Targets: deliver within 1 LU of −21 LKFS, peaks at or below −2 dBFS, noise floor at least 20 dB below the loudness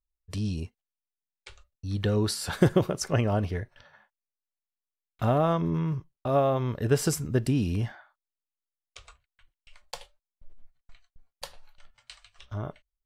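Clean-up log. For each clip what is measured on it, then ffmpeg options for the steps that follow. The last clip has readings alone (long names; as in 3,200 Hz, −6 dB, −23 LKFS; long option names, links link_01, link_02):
integrated loudness −28.0 LKFS; sample peak −8.0 dBFS; target loudness −21.0 LKFS
→ -af "volume=7dB,alimiter=limit=-2dB:level=0:latency=1"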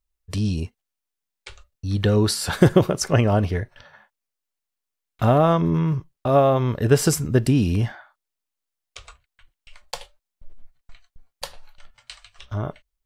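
integrated loudness −21.0 LKFS; sample peak −2.0 dBFS; background noise floor −84 dBFS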